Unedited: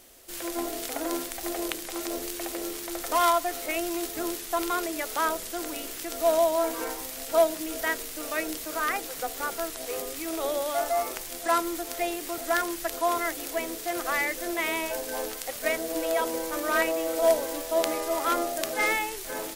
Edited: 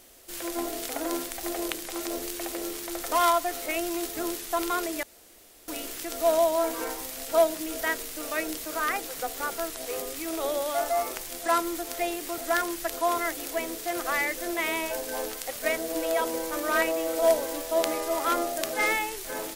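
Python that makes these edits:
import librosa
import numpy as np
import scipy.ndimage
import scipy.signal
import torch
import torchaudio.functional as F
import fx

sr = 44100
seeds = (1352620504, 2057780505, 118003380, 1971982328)

y = fx.edit(x, sr, fx.room_tone_fill(start_s=5.03, length_s=0.65), tone=tone)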